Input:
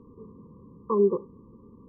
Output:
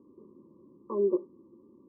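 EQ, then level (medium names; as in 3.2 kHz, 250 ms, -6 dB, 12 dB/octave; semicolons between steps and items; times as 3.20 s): two resonant band-passes 460 Hz, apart 0.79 oct; +5.5 dB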